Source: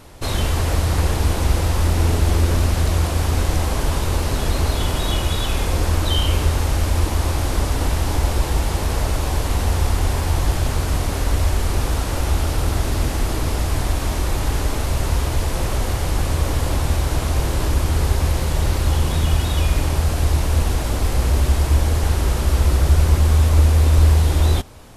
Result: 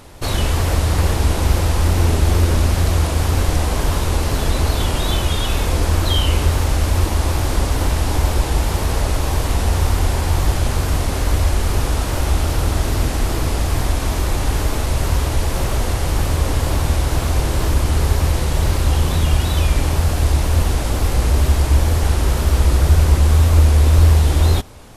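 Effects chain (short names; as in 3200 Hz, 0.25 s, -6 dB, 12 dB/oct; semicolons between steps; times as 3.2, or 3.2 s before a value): wow and flutter 75 cents; gain +2 dB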